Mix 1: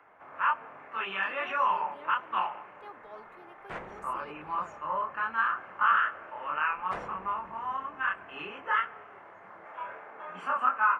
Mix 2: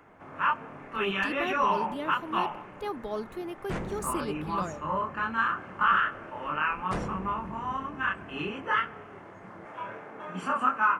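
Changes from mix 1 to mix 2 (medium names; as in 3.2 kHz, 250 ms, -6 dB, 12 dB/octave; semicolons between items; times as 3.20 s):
speech +9.5 dB; master: remove three-band isolator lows -16 dB, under 520 Hz, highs -14 dB, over 2.9 kHz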